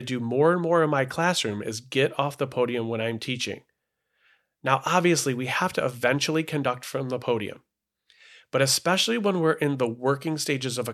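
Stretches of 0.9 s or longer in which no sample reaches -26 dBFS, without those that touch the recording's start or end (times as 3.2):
3.54–4.65
7.52–8.53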